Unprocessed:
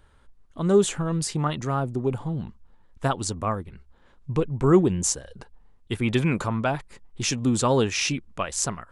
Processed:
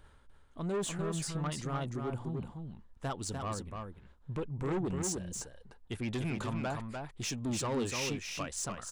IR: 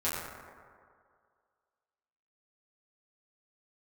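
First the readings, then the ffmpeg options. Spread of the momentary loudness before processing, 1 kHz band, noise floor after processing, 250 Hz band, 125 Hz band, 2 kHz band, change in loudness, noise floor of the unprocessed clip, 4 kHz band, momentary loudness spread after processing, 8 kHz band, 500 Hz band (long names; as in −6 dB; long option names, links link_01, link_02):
11 LU, −11.0 dB, −60 dBFS, −11.5 dB, −10.5 dB, −10.0 dB, −11.5 dB, −56 dBFS, −9.5 dB, 11 LU, −9.5 dB, −13.0 dB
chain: -af "areverse,acompressor=mode=upward:threshold=-38dB:ratio=2.5,areverse,asoftclip=type=tanh:threshold=-21.5dB,aecho=1:1:297:0.562,volume=-8.5dB"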